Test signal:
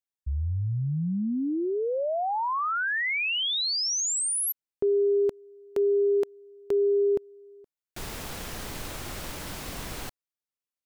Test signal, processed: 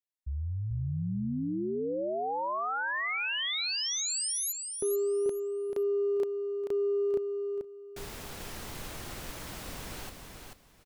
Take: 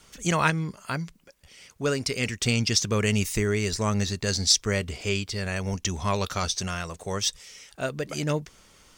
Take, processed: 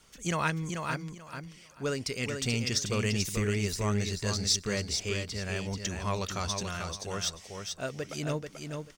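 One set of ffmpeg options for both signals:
-filter_complex "[0:a]asplit=2[a][b];[b]volume=23.5dB,asoftclip=hard,volume=-23.5dB,volume=-10dB[c];[a][c]amix=inputs=2:normalize=0,aecho=1:1:437|874|1311:0.531|0.111|0.0234,volume=-8dB"

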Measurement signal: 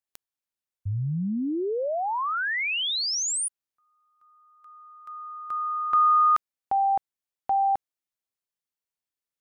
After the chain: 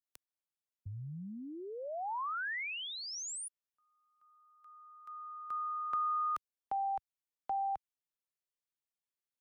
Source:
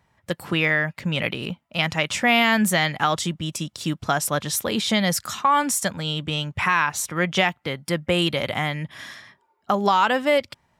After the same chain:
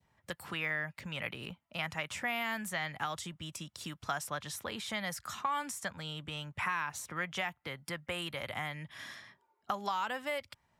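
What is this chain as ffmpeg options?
-filter_complex "[0:a]acrossover=split=100|800|2200|7700[a][b][c][d][e];[a]acompressor=threshold=-45dB:ratio=4[f];[b]acompressor=threshold=-39dB:ratio=4[g];[c]acompressor=threshold=-24dB:ratio=4[h];[d]acompressor=threshold=-40dB:ratio=4[i];[e]acompressor=threshold=-40dB:ratio=4[j];[f][g][h][i][j]amix=inputs=5:normalize=0,adynamicequalizer=threshold=0.0141:dfrequency=1300:dqfactor=0.92:tfrequency=1300:tqfactor=0.92:attack=5:release=100:ratio=0.375:range=2:mode=cutabove:tftype=bell,volume=-7.5dB"

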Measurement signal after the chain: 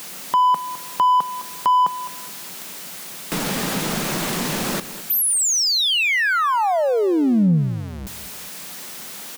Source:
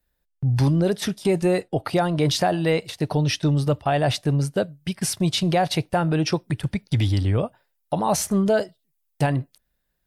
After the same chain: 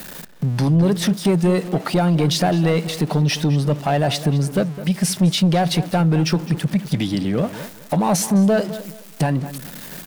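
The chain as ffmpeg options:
-filter_complex "[0:a]aeval=exprs='val(0)+0.5*0.0178*sgn(val(0))':c=same,lowshelf=f=120:t=q:w=3:g=-12.5,asplit=2[a][b];[b]acompressor=threshold=-30dB:ratio=6,volume=3dB[c];[a][c]amix=inputs=2:normalize=0,asoftclip=type=tanh:threshold=-10dB,asplit=2[d][e];[e]adelay=209,lowpass=f=3.6k:p=1,volume=-14dB,asplit=2[f][g];[g]adelay=209,lowpass=f=3.6k:p=1,volume=0.26,asplit=2[h][i];[i]adelay=209,lowpass=f=3.6k:p=1,volume=0.26[j];[d][f][h][j]amix=inputs=4:normalize=0"

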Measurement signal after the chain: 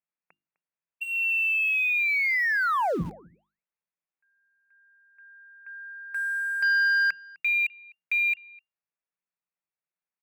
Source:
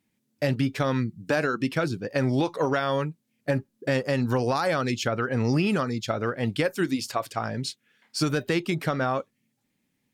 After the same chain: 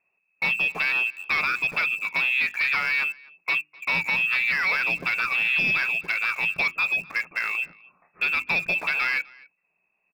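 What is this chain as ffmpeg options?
-filter_complex "[0:a]equalizer=f=64:w=3.7:g=-13,lowpass=f=2.4k:t=q:w=0.5098,lowpass=f=2.4k:t=q:w=0.6013,lowpass=f=2.4k:t=q:w=0.9,lowpass=f=2.4k:t=q:w=2.563,afreqshift=-2800,equalizer=f=170:w=3.6:g=14,aresample=11025,asoftclip=type=tanh:threshold=-24dB,aresample=44100,bandreject=f=50:t=h:w=6,bandreject=f=100:t=h:w=6,bandreject=f=150:t=h:w=6,bandreject=f=200:t=h:w=6,bandreject=f=250:t=h:w=6,bandreject=f=300:t=h:w=6,bandreject=f=350:t=h:w=6,aecho=1:1:254:0.0841,asplit=2[a][b];[b]aeval=exprs='val(0)*gte(abs(val(0)),0.0126)':c=same,volume=-7.5dB[c];[a][c]amix=inputs=2:normalize=0,volume=2dB"

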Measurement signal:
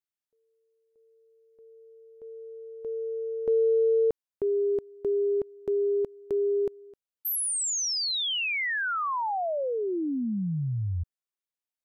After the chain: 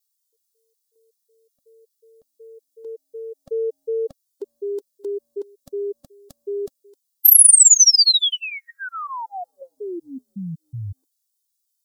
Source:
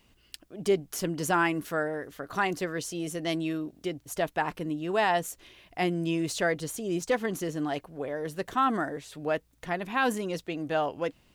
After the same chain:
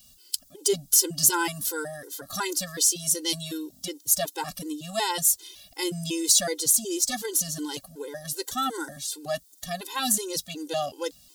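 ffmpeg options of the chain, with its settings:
-af "aexciter=amount=10.8:drive=3.5:freq=3.5k,afftfilt=real='re*gt(sin(2*PI*2.7*pts/sr)*(1-2*mod(floor(b*sr/1024/270),2)),0)':imag='im*gt(sin(2*PI*2.7*pts/sr)*(1-2*mod(floor(b*sr/1024/270),2)),0)':win_size=1024:overlap=0.75"

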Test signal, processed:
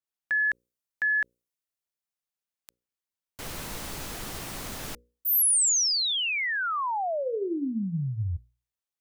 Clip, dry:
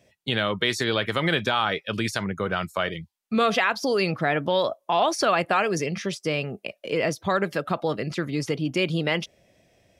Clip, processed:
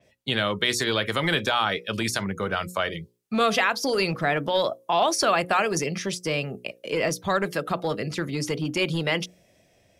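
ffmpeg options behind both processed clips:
-filter_complex "[0:a]bandreject=f=60:t=h:w=6,bandreject=f=120:t=h:w=6,bandreject=f=180:t=h:w=6,bandreject=f=240:t=h:w=6,bandreject=f=300:t=h:w=6,bandreject=f=360:t=h:w=6,bandreject=f=420:t=h:w=6,bandreject=f=480:t=h:w=6,bandreject=f=540:t=h:w=6,acrossover=split=650[a][b];[a]volume=21.5dB,asoftclip=hard,volume=-21.5dB[c];[c][b]amix=inputs=2:normalize=0,adynamicequalizer=threshold=0.00708:dfrequency=5100:dqfactor=0.7:tfrequency=5100:tqfactor=0.7:attack=5:release=100:ratio=0.375:range=3.5:mode=boostabove:tftype=highshelf"

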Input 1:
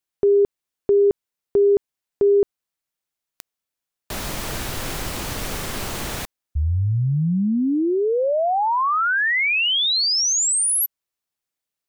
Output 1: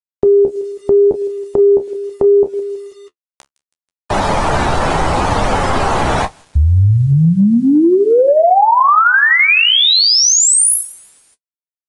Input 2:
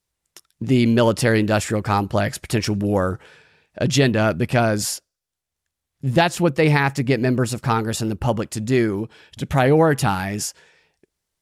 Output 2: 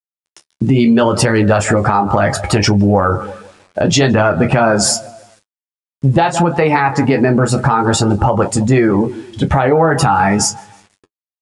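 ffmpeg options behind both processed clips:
-filter_complex "[0:a]equalizer=f=840:t=o:w=0.31:g=4.5,asplit=2[a][b];[b]adelay=30,volume=-11dB[c];[a][c]amix=inputs=2:normalize=0,asplit=2[d][e];[e]aecho=0:1:162|324|486|648:0.0891|0.0472|0.025|0.0133[f];[d][f]amix=inputs=2:normalize=0,adynamicequalizer=threshold=0.0158:dfrequency=1300:dqfactor=4.3:tfrequency=1300:tqfactor=4.3:attack=5:release=100:ratio=0.417:range=2.5:mode=boostabove:tftype=bell,acrossover=split=640|1100[g][h][i];[h]dynaudnorm=f=240:g=11:m=8.5dB[j];[g][j][i]amix=inputs=3:normalize=0,afftdn=nr=13:nf=-31,acrusher=bits=9:mix=0:aa=0.000001,flanger=delay=9.6:depth=5.2:regen=-33:speed=0.73:shape=triangular,aresample=22050,aresample=44100,acompressor=threshold=-25dB:ratio=12:attack=8.3:release=130:knee=6:detection=rms,alimiter=level_in=19dB:limit=-1dB:release=50:level=0:latency=1,volume=-1dB"

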